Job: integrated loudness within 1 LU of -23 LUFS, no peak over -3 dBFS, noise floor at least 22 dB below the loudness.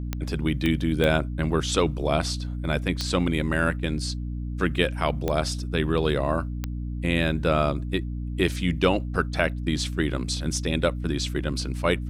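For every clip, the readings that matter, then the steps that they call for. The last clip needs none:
clicks 6; hum 60 Hz; harmonics up to 300 Hz; hum level -28 dBFS; loudness -26.0 LUFS; peak -6.0 dBFS; loudness target -23.0 LUFS
-> de-click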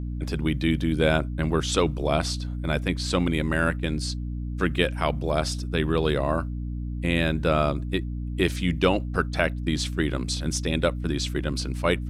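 clicks 0; hum 60 Hz; harmonics up to 300 Hz; hum level -28 dBFS
-> notches 60/120/180/240/300 Hz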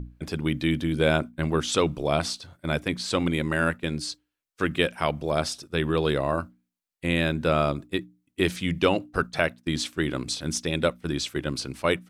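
hum none; loudness -26.5 LUFS; peak -7.0 dBFS; loudness target -23.0 LUFS
-> gain +3.5 dB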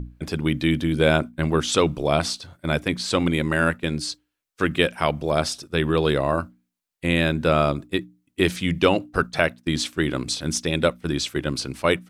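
loudness -23.0 LUFS; peak -3.5 dBFS; noise floor -78 dBFS

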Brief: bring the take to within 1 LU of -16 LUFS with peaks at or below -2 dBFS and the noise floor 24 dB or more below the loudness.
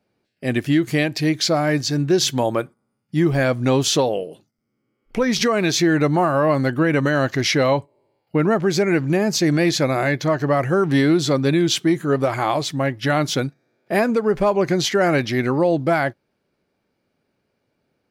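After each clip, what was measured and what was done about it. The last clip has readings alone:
loudness -19.5 LUFS; peak -8.0 dBFS; loudness target -16.0 LUFS
-> gain +3.5 dB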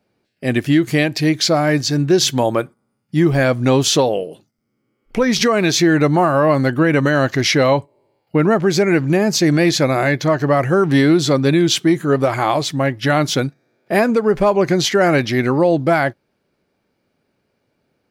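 loudness -16.0 LUFS; peak -4.5 dBFS; noise floor -70 dBFS

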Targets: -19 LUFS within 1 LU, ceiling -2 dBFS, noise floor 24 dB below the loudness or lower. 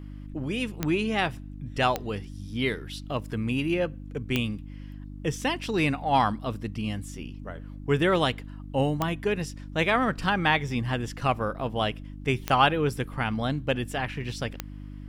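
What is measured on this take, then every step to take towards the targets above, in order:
clicks 6; hum 50 Hz; harmonics up to 300 Hz; hum level -37 dBFS; loudness -27.5 LUFS; peak -7.5 dBFS; loudness target -19.0 LUFS
-> de-click; de-hum 50 Hz, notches 6; gain +8.5 dB; limiter -2 dBFS

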